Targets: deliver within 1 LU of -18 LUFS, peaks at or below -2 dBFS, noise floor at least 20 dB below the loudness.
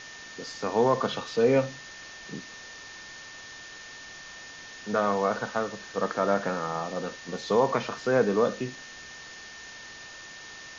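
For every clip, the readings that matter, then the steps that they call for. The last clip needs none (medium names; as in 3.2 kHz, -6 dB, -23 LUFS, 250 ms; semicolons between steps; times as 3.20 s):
steady tone 1.8 kHz; tone level -45 dBFS; noise floor -45 dBFS; noise floor target -48 dBFS; loudness -27.5 LUFS; peak level -10.5 dBFS; loudness target -18.0 LUFS
-> band-stop 1.8 kHz, Q 30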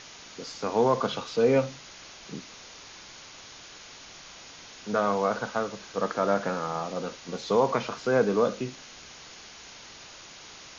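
steady tone not found; noise floor -47 dBFS; noise floor target -48 dBFS
-> noise print and reduce 6 dB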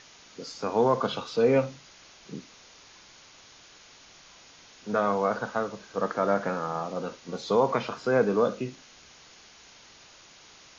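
noise floor -53 dBFS; loudness -27.5 LUFS; peak level -10.5 dBFS; loudness target -18.0 LUFS
-> trim +9.5 dB; peak limiter -2 dBFS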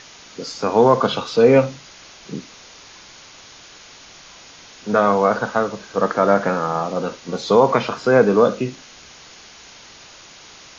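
loudness -18.0 LUFS; peak level -2.0 dBFS; noise floor -44 dBFS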